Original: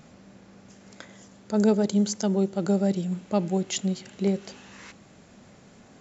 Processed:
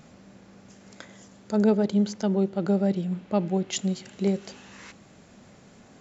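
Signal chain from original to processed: 1.56–3.73 s: low-pass 3.8 kHz 12 dB/octave

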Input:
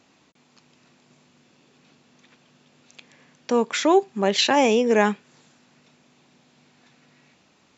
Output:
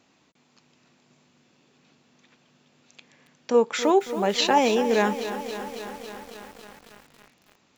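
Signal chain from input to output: 3.54–4.58 s: small resonant body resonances 480/860/1300 Hz, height 8 dB; bit-crushed delay 276 ms, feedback 80%, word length 6-bit, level -11.5 dB; trim -3.5 dB

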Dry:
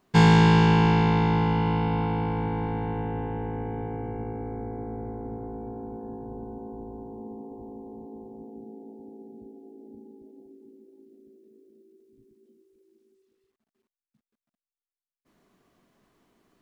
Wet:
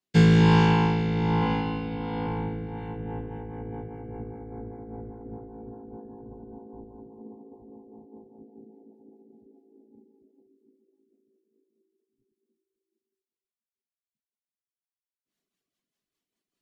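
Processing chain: reverb removal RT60 0.62 s; rotary cabinet horn 1.2 Hz, later 5 Hz, at 2.42 s; in parallel at 0 dB: compression, threshold -36 dBFS, peak gain reduction 18.5 dB; 1.38–2.27 s: on the sum: flutter echo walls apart 6.9 m, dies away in 0.53 s; three bands expanded up and down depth 70%; trim -4.5 dB

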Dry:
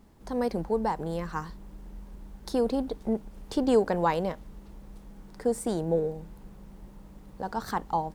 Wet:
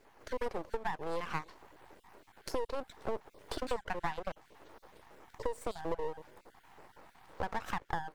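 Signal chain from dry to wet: random holes in the spectrogram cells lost 37%; Bessel high-pass 580 Hz, order 8; treble shelf 2.6 kHz -12 dB; compression 12:1, threshold -41 dBFS, peak gain reduction 17.5 dB; half-wave rectifier; trim +12.5 dB

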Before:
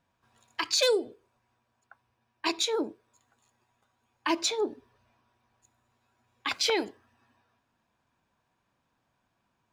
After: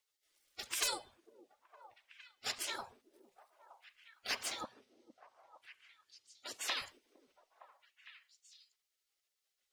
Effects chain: coarse spectral quantiser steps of 15 dB; 4.64–6.82 s: frequency weighting A; spectral gate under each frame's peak -20 dB weak; peaking EQ 170 Hz -8 dB 0.88 oct; repeats whose band climbs or falls 459 ms, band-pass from 310 Hz, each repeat 1.4 oct, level -9.5 dB; trim +4.5 dB

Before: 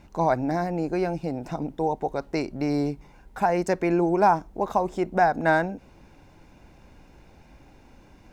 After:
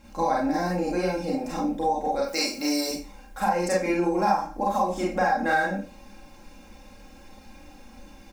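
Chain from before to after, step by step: treble shelf 3.5 kHz +8.5 dB; comb 3.7 ms, depth 74%; 2.24–2.91 s: RIAA curve recording; Schroeder reverb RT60 0.33 s, combs from 30 ms, DRR -5.5 dB; compression 2.5:1, threshold -17 dBFS, peak gain reduction 9.5 dB; trim -5 dB

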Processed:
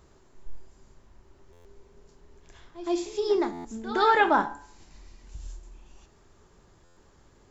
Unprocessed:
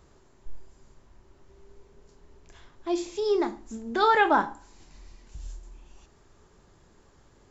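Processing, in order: de-hum 143.3 Hz, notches 31; pre-echo 115 ms -14 dB; buffer glitch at 1.52/3.52/6.84 s, samples 512, times 10

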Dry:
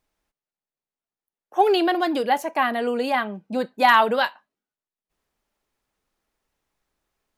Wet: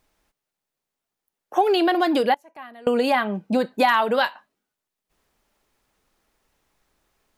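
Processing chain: 2.34–2.87 s: inverted gate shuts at -26 dBFS, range -27 dB; compression 4:1, threshold -26 dBFS, peak gain reduction 12.5 dB; trim +8.5 dB

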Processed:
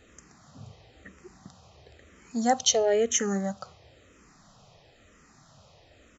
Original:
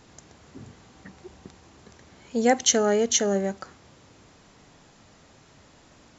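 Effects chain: comb 1.6 ms, depth 31%; barber-pole phaser -1 Hz

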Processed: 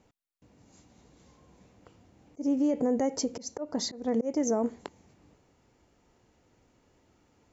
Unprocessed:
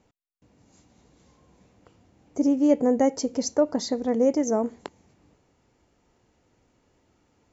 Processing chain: slow attack 245 ms; peak limiter -19.5 dBFS, peak gain reduction 11 dB

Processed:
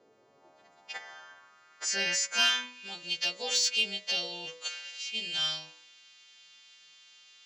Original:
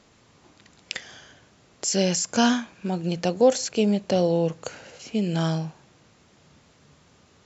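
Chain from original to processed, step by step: partials quantised in pitch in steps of 2 st; band-pass sweep 450 Hz -> 3.2 kHz, 0.09–2.82 s; de-hum 61.85 Hz, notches 37; in parallel at -8 dB: hard clipper -28 dBFS, distortion -13 dB; on the sum: trim +2 dB

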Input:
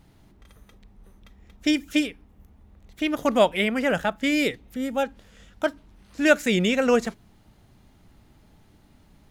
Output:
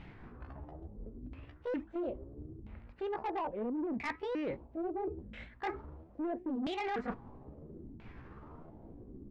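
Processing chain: sawtooth pitch modulation +9 st, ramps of 870 ms; peak limiter -16 dBFS, peak gain reduction 10 dB; LFO low-pass saw down 0.75 Hz 260–2600 Hz; saturation -21 dBFS, distortion -14 dB; reverse; compression 5:1, threshold -41 dBFS, peak gain reduction 15.5 dB; reverse; loudspeaker Doppler distortion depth 0.18 ms; trim +4.5 dB

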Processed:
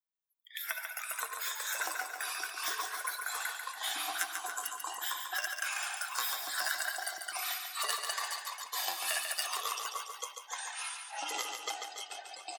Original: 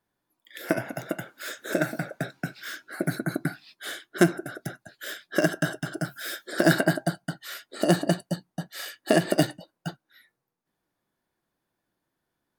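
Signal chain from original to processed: expander on every frequency bin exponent 1.5; high-pass 1 kHz 24 dB/octave; tilt EQ +2 dB/octave; compression 5:1, threshold -37 dBFS, peak gain reduction 16.5 dB; ever faster or slower copies 229 ms, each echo -6 st, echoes 2; feedback delay 142 ms, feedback 53%, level -6 dB; trim +3.5 dB

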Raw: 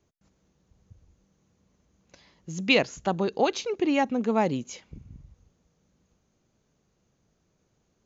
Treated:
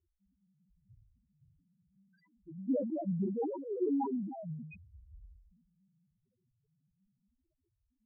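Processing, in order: flange 0.39 Hz, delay 2.6 ms, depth 5.7 ms, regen +18%; dynamic bell 170 Hz, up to +3 dB, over -41 dBFS, Q 1.1; 4.27–5.15 s: pitch-class resonator D#, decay 0.18 s; ever faster or slower copies 658 ms, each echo +3 st, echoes 2, each echo -6 dB; loudest bins only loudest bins 1; in parallel at -1.5 dB: compression, threshold -55 dBFS, peak gain reduction 24 dB; on the sum: de-hum 53.05 Hz, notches 2; decay stretcher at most 57 dB/s

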